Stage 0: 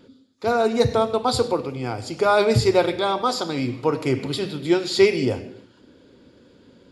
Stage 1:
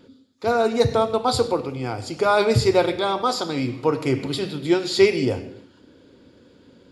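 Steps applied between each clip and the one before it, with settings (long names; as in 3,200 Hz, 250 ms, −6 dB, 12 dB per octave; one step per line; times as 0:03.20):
convolution reverb RT60 0.70 s, pre-delay 5 ms, DRR 16 dB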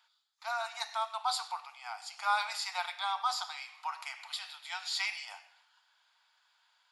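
Butterworth high-pass 750 Hz 72 dB per octave
level −8 dB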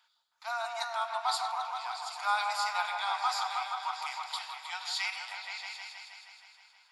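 echo whose low-pass opens from repeat to repeat 158 ms, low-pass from 750 Hz, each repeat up 1 octave, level 0 dB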